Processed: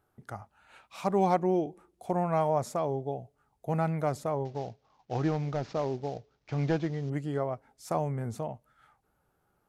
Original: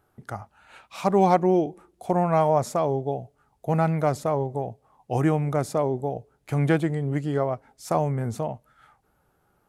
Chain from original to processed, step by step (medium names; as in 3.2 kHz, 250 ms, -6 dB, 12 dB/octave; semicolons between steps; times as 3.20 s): 4.45–7.10 s: CVSD coder 32 kbps; trim -6.5 dB